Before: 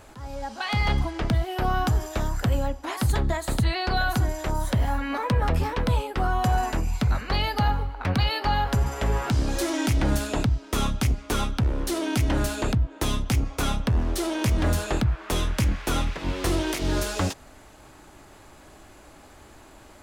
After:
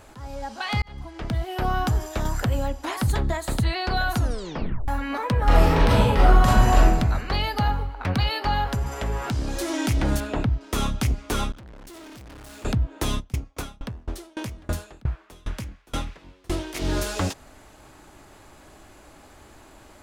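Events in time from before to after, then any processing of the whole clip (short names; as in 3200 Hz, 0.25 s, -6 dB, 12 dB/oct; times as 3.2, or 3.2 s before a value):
0.82–1.58 fade in
2.25–3.08 three-band squash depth 70%
4.15 tape stop 0.73 s
5.44–6.85 reverb throw, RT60 1 s, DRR -7.5 dB
8.7–9.7 compressor 1.5:1, threshold -27 dBFS
10.2–10.61 tone controls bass 0 dB, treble -14 dB
11.52–12.65 tube stage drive 42 dB, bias 0.8
13.19–16.74 dB-ramp tremolo decaying 4.8 Hz -> 1.5 Hz, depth 31 dB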